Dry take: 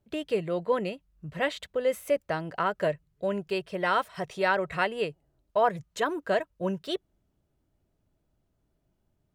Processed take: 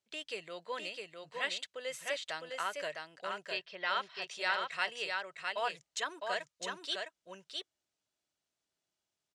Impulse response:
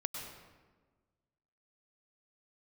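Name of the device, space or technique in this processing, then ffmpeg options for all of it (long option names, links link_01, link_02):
piezo pickup straight into a mixer: -filter_complex "[0:a]lowpass=7400,lowpass=7800,aderivative,asettb=1/sr,asplit=3[link_01][link_02][link_03];[link_01]atrim=end=3.484[link_04];[link_02]atrim=start=3.48:end=4.22,asetpts=PTS-STARTPTS,afade=type=in:duration=0.004:curve=qsin,afade=type=out:start_time=0.736:duration=0.004:curve=qsin,lowpass=frequency=4800:width=0.5412,lowpass=frequency=4800:width=1.3066[link_05];[link_03]atrim=start=4.216[link_06];[link_04][link_05]acrossfade=duration=0.004:curve1=hsin:curve2=qsin[link_07];[link_07][link_06]acrossfade=duration=0.004:curve1=qsin:curve2=hsin,aecho=1:1:658:0.631,volume=7dB"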